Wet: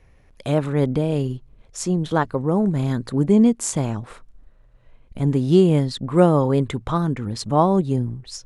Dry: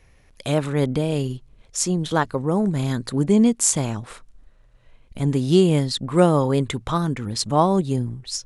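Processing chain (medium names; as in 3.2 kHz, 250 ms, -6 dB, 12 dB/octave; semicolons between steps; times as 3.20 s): treble shelf 2.3 kHz -9.5 dB; trim +1.5 dB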